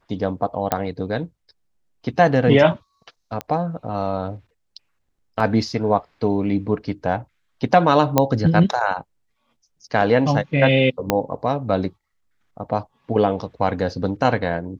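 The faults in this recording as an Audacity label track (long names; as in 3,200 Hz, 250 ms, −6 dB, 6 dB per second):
0.720000	0.720000	click −5 dBFS
3.410000	3.410000	click −13 dBFS
5.400000	5.400000	drop-out 2.7 ms
8.180000	8.180000	click −1 dBFS
11.100000	11.100000	click −2 dBFS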